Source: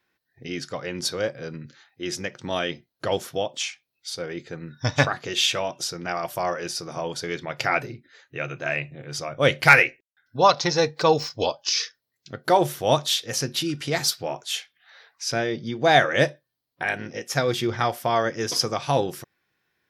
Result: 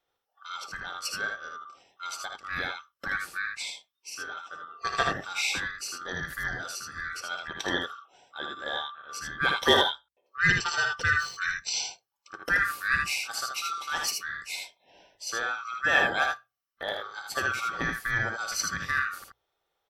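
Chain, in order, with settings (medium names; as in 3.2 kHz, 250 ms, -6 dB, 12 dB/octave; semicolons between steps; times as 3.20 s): split-band scrambler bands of 1 kHz; hum notches 60/120 Hz; on a send: early reflections 56 ms -10 dB, 78 ms -4.5 dB; on the sum: trim -7.5 dB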